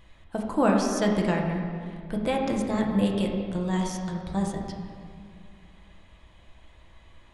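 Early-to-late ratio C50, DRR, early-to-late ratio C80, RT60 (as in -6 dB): 2.5 dB, -0.5 dB, 4.0 dB, 2.2 s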